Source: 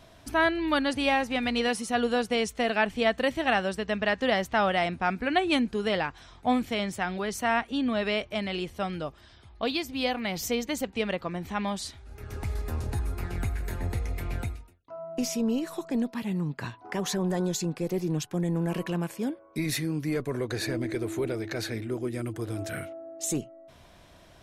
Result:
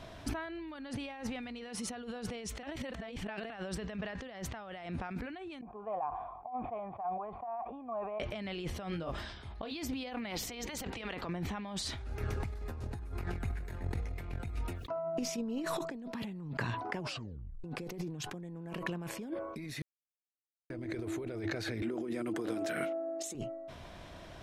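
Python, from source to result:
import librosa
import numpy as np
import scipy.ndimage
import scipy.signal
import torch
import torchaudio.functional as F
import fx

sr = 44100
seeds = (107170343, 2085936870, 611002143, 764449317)

y = fx.formant_cascade(x, sr, vowel='a', at=(5.61, 8.2))
y = fx.doubler(y, sr, ms=24.0, db=-6.0, at=(8.9, 9.7), fade=0.02)
y = fx.spec_clip(y, sr, under_db=13, at=(10.29, 11.26), fade=0.02)
y = fx.over_compress(y, sr, threshold_db=-32.0, ratio=-0.5, at=(13.39, 15.8), fade=0.02)
y = fx.highpass(y, sr, hz=190.0, slope=24, at=(21.82, 23.35))
y = fx.edit(y, sr, fx.reverse_span(start_s=2.63, length_s=0.87),
    fx.tape_stop(start_s=16.94, length_s=0.7),
    fx.silence(start_s=19.82, length_s=0.88), tone=tone)
y = fx.over_compress(y, sr, threshold_db=-38.0, ratio=-1.0)
y = fx.high_shelf(y, sr, hz=7000.0, db=-11.0)
y = fx.sustainer(y, sr, db_per_s=45.0)
y = F.gain(torch.from_numpy(y), -2.5).numpy()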